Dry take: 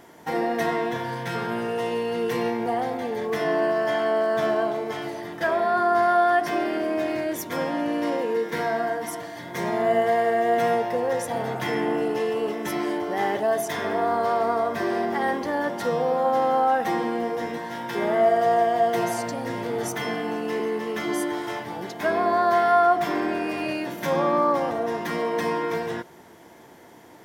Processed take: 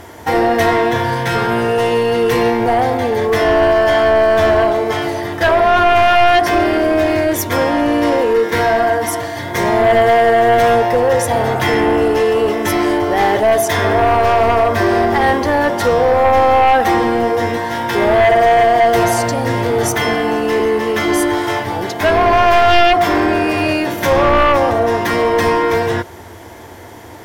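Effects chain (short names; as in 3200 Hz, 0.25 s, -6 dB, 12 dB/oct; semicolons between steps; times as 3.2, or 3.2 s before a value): sine folder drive 8 dB, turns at -8.5 dBFS; resonant low shelf 120 Hz +8 dB, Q 3; gain +1.5 dB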